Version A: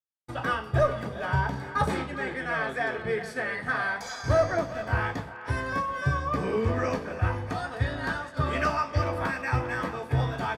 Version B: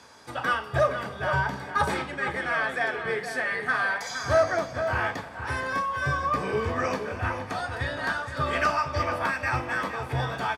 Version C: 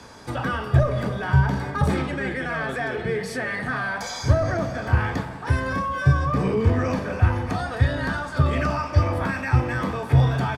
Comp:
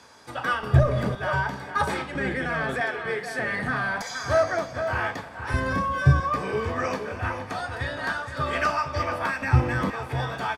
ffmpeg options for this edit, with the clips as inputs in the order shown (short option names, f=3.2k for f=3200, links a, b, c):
-filter_complex "[2:a]asplit=5[a][b][c][d][e];[1:a]asplit=6[f][g][h][i][j][k];[f]atrim=end=0.632[l];[a]atrim=start=0.628:end=1.152[m];[g]atrim=start=1.148:end=2.152[n];[b]atrim=start=2.148:end=2.812[o];[h]atrim=start=2.808:end=3.392[p];[c]atrim=start=3.388:end=4.022[q];[i]atrim=start=4.018:end=5.542[r];[d]atrim=start=5.538:end=6.202[s];[j]atrim=start=6.198:end=9.422[t];[e]atrim=start=9.418:end=9.902[u];[k]atrim=start=9.898[v];[l][m]acrossfade=d=0.004:c1=hsin:c2=hsin[w];[w][n]acrossfade=d=0.004:c1=hsin:c2=hsin[x];[x][o]acrossfade=d=0.004:c1=hsin:c2=hsin[y];[y][p]acrossfade=d=0.004:c1=hsin:c2=hsin[z];[z][q]acrossfade=d=0.004:c1=hsin:c2=hsin[aa];[aa][r]acrossfade=d=0.004:c1=hsin:c2=hsin[ab];[ab][s]acrossfade=d=0.004:c1=hsin:c2=hsin[ac];[ac][t]acrossfade=d=0.004:c1=hsin:c2=hsin[ad];[ad][u]acrossfade=d=0.004:c1=hsin:c2=hsin[ae];[ae][v]acrossfade=d=0.004:c1=hsin:c2=hsin"